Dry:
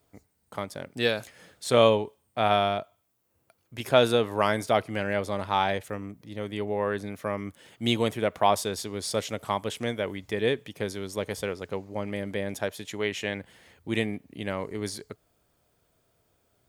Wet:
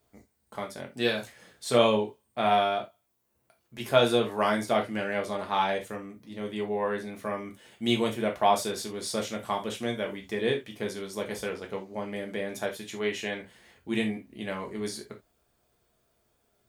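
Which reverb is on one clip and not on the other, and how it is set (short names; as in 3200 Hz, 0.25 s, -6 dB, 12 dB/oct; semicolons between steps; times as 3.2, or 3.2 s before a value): non-linear reverb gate 0.1 s falling, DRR 0.5 dB; gain -4 dB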